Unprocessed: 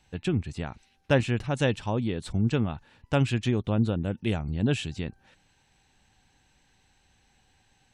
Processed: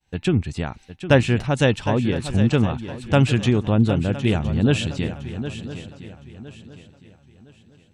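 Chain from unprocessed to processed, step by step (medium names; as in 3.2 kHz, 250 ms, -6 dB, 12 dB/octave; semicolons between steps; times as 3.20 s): expander -55 dBFS; shuffle delay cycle 1012 ms, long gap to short 3:1, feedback 31%, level -11.5 dB; trim +7 dB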